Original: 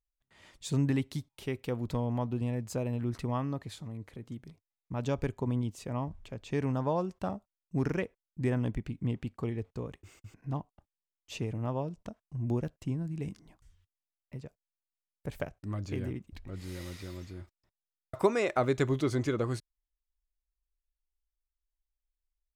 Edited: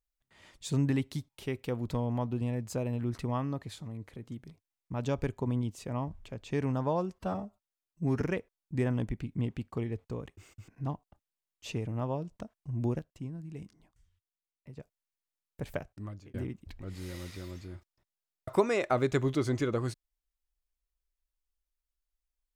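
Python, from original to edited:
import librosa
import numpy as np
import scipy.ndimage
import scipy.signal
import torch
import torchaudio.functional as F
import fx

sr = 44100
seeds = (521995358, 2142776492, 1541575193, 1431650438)

y = fx.edit(x, sr, fx.stretch_span(start_s=7.19, length_s=0.68, factor=1.5),
    fx.clip_gain(start_s=12.65, length_s=1.78, db=-6.5),
    fx.fade_out_span(start_s=15.5, length_s=0.5), tone=tone)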